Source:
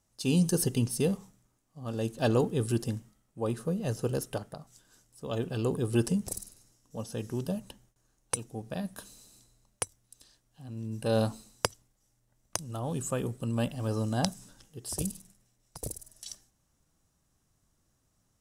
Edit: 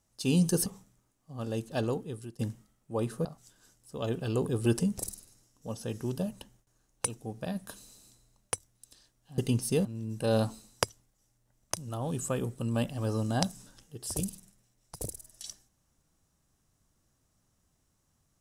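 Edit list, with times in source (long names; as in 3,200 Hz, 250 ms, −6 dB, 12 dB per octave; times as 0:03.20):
0:00.66–0:01.13: move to 0:10.67
0:01.82–0:02.86: fade out, to −22.5 dB
0:03.72–0:04.54: remove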